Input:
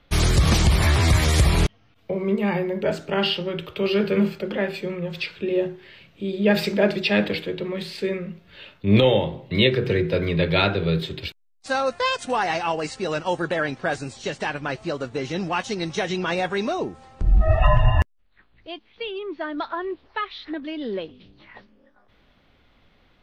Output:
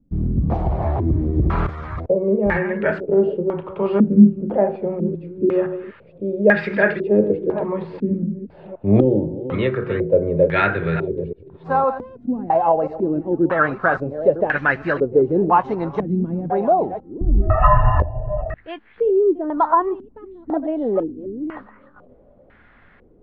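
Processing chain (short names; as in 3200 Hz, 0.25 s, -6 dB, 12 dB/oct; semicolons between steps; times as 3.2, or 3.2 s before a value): reverse delay 0.515 s, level -11 dB; vocal rider within 5 dB 2 s; stepped low-pass 2 Hz 240–1700 Hz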